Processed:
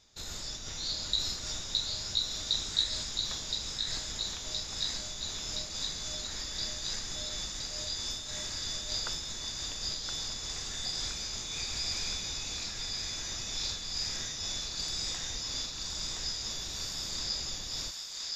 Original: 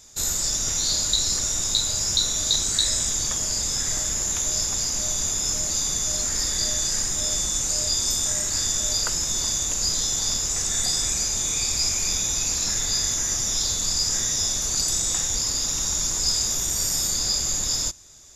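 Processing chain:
high shelf with overshoot 6,100 Hz −13.5 dB, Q 1.5
feedback echo with a high-pass in the loop 1,019 ms, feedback 73%, high-pass 1,000 Hz, level −3.5 dB
amplitude modulation by smooth noise, depth 60%
level −7.5 dB

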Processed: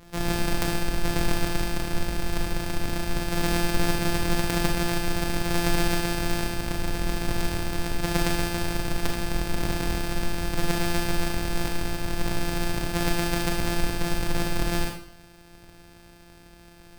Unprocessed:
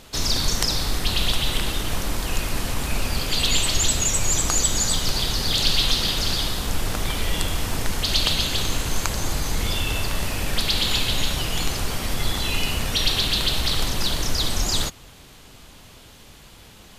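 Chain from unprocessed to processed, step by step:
samples sorted by size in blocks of 256 samples
four-comb reverb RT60 0.51 s, combs from 26 ms, DRR 1.5 dB
level −4.5 dB

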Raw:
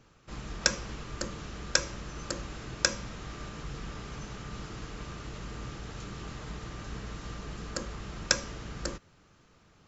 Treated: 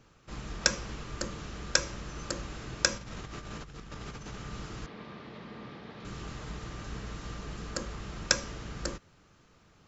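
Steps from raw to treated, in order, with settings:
0:02.97–0:04.34: compressor whose output falls as the input rises −42 dBFS, ratio −0.5
0:04.86–0:06.05: loudspeaker in its box 190–3,800 Hz, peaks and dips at 220 Hz +5 dB, 310 Hz −3 dB, 1,400 Hz −6 dB, 2,800 Hz −6 dB

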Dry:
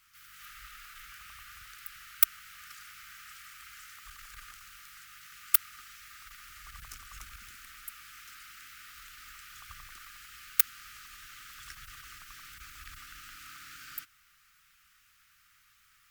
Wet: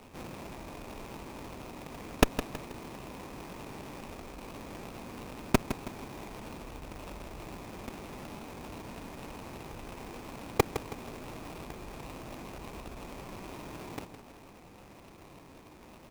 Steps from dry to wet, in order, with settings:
samples sorted by size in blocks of 16 samples
in parallel at 0 dB: compressor whose output falls as the input rises −55 dBFS, ratio −1
on the sum: sample-rate reduction 2,500 Hz, jitter 20%
formants moved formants −5 semitones
on a send: repeating echo 161 ms, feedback 40%, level −11 dB
on the sum: windowed peak hold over 9 samples

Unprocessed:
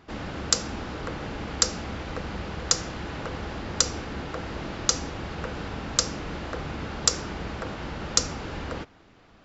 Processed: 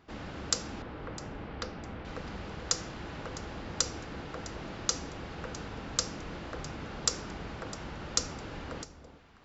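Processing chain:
0:00.82–0:02.05: high-frequency loss of the air 290 metres
delay that swaps between a low-pass and a high-pass 328 ms, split 920 Hz, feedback 50%, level −11.5 dB
level −7 dB

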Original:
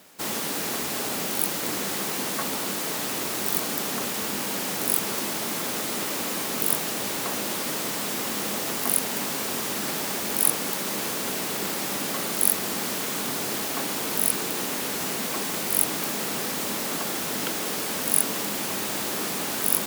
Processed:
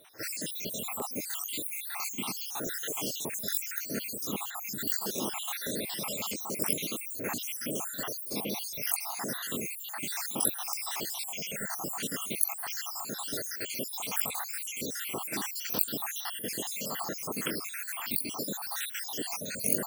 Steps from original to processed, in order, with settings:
time-frequency cells dropped at random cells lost 75%
echo ahead of the sound 49 ms −19 dB
notch on a step sequencer 3 Hz 210–5,200 Hz

